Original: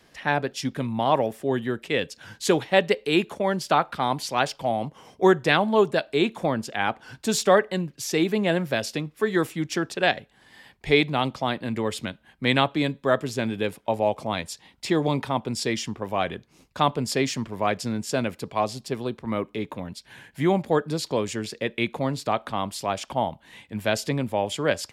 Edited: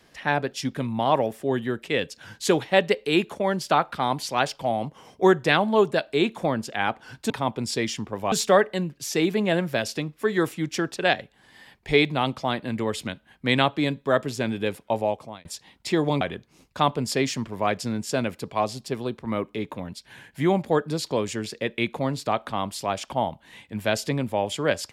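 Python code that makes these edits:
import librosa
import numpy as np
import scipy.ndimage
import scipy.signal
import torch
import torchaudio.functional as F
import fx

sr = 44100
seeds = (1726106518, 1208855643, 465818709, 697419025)

y = fx.edit(x, sr, fx.fade_out_span(start_s=13.96, length_s=0.47),
    fx.move(start_s=15.19, length_s=1.02, to_s=7.3), tone=tone)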